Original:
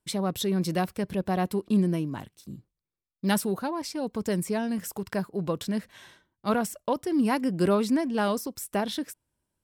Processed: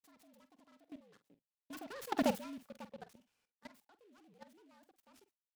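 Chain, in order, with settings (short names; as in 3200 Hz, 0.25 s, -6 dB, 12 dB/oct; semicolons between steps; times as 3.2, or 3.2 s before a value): Doppler pass-by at 3.81, 31 m/s, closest 2.1 m; HPF 200 Hz 12 dB/oct; comb 5.7 ms, depth 35%; level quantiser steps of 18 dB; frequency shift -53 Hz; echo 81 ms -13.5 dB; speed mistake 45 rpm record played at 78 rpm; noise-modulated delay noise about 2400 Hz, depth 0.042 ms; gain +7.5 dB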